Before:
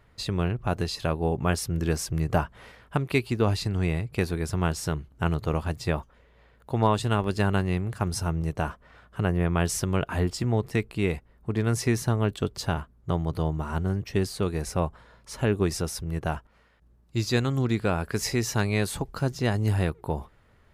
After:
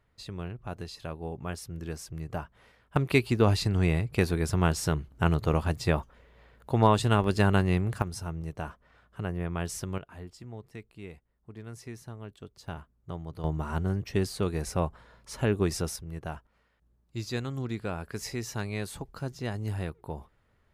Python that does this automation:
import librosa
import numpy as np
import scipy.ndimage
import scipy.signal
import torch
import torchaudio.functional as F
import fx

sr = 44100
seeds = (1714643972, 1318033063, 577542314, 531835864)

y = fx.gain(x, sr, db=fx.steps((0.0, -11.0), (2.96, 1.0), (8.02, -8.0), (9.98, -18.0), (12.68, -11.5), (13.44, -2.0), (15.96, -8.5)))